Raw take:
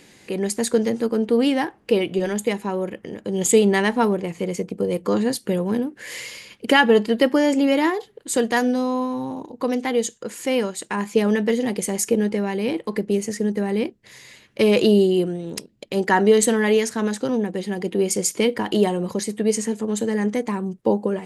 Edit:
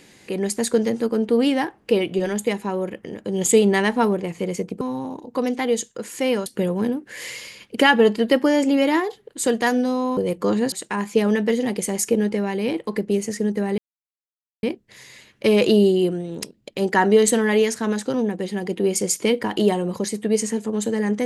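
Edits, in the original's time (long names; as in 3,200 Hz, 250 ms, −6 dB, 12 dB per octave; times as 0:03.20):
0:04.81–0:05.36: swap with 0:09.07–0:10.72
0:13.78: splice in silence 0.85 s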